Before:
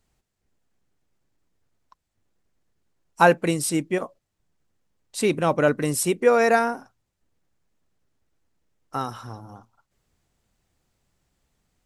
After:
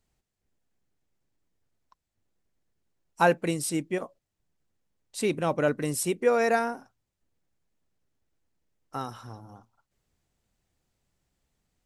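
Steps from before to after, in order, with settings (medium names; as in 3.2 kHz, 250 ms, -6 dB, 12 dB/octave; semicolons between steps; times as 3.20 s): peaking EQ 1.2 kHz -2 dB; trim -5 dB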